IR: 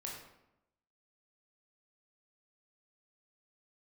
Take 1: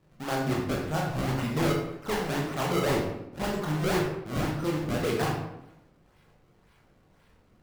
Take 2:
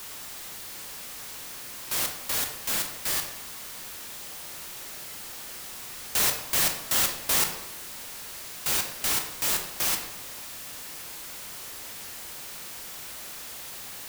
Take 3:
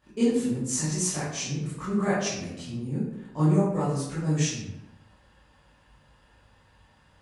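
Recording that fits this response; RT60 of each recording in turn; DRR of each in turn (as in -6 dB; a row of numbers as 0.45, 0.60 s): 1; 0.85, 0.85, 0.85 s; -2.5, 3.5, -12.0 dB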